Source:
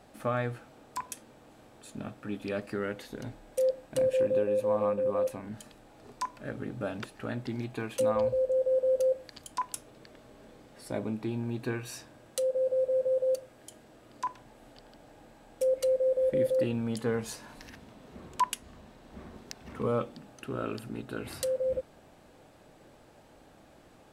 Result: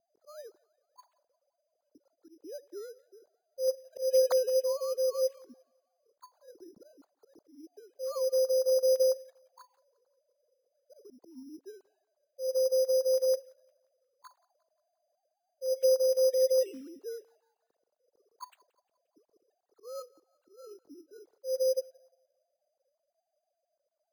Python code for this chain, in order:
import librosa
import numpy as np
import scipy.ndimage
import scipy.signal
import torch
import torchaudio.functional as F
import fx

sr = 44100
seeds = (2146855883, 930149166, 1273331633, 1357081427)

y = fx.sine_speech(x, sr)
y = fx.env_lowpass(y, sr, base_hz=390.0, full_db=-24.0)
y = fx.auto_swell(y, sr, attack_ms=162.0)
y = fx.echo_thinned(y, sr, ms=176, feedback_pct=57, hz=800.0, wet_db=-22.0)
y = np.repeat(y[::8], 8)[:len(y)]